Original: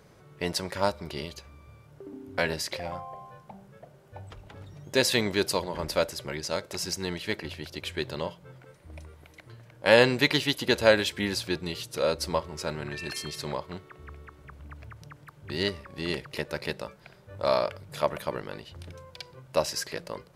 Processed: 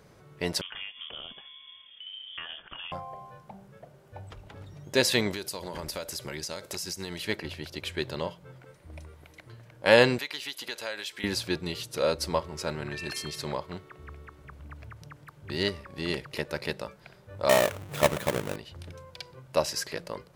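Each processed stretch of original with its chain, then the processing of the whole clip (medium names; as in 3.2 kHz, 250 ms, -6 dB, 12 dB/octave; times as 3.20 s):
0.61–2.92 s: compression 5:1, threshold -36 dBFS + frequency inversion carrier 3.4 kHz
5.33–7.25 s: treble shelf 4.9 kHz +9.5 dB + compression 10:1, threshold -31 dBFS
10.18–11.24 s: high-pass 1.2 kHz 6 dB/octave + compression 2.5:1, threshold -35 dBFS
17.49–18.56 s: square wave that keeps the level + high-pass 59 Hz + peaking EQ 4.8 kHz -5 dB 0.55 oct
whole clip: none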